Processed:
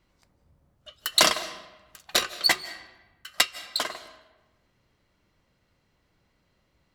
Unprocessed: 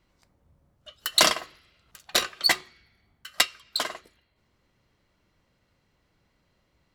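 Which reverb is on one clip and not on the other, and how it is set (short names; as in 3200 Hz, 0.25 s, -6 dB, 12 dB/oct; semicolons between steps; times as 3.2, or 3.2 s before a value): digital reverb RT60 1.1 s, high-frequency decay 0.7×, pre-delay 0.12 s, DRR 15.5 dB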